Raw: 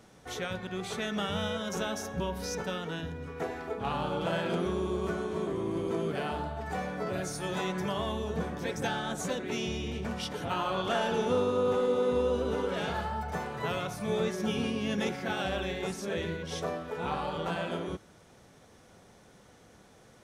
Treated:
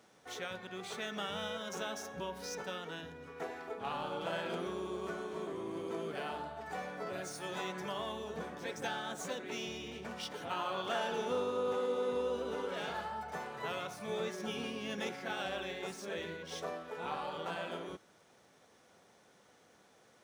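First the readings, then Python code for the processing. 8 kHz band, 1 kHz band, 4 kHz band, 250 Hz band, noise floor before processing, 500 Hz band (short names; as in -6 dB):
-5.5 dB, -5.5 dB, -4.5 dB, -10.5 dB, -58 dBFS, -7.0 dB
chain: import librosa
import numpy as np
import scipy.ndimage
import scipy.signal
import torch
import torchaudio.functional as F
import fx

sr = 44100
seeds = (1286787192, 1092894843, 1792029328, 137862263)

y = scipy.signal.medfilt(x, 3)
y = fx.highpass(y, sr, hz=400.0, slope=6)
y = F.gain(torch.from_numpy(y), -4.5).numpy()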